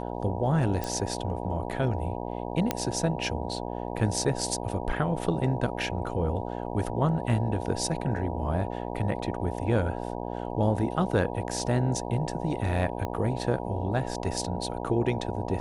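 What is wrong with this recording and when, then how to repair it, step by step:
buzz 60 Hz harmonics 16 -34 dBFS
0.84 s: pop
2.71 s: pop -10 dBFS
13.05 s: pop -19 dBFS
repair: de-click; de-hum 60 Hz, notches 16

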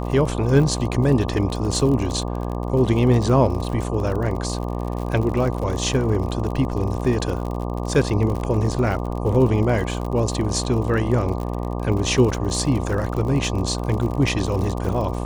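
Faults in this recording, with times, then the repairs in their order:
buzz 60 Hz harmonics 20 -26 dBFS
crackle 55 per s -27 dBFS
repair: de-click; de-hum 60 Hz, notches 20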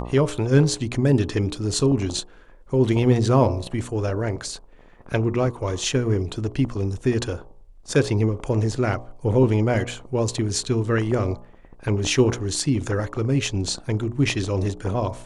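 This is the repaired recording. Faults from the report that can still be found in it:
nothing left

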